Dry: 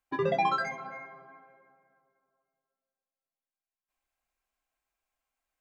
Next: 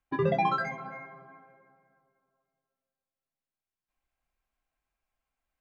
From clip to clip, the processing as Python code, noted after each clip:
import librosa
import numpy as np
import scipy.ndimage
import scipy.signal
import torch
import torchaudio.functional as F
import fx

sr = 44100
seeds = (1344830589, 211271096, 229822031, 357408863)

y = fx.bass_treble(x, sr, bass_db=8, treble_db=-7)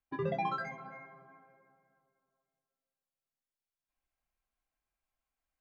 y = fx.rider(x, sr, range_db=10, speed_s=2.0)
y = y * librosa.db_to_amplitude(-8.0)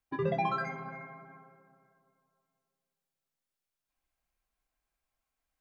y = fx.echo_filtered(x, sr, ms=61, feedback_pct=84, hz=4300.0, wet_db=-15.5)
y = y * librosa.db_to_amplitude(3.0)